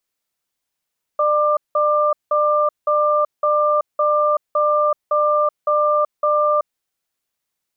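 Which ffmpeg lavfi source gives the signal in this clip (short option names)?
-f lavfi -i "aevalsrc='0.15*(sin(2*PI*598*t)+sin(2*PI*1190*t))*clip(min(mod(t,0.56),0.38-mod(t,0.56))/0.005,0,1)':d=5.53:s=44100"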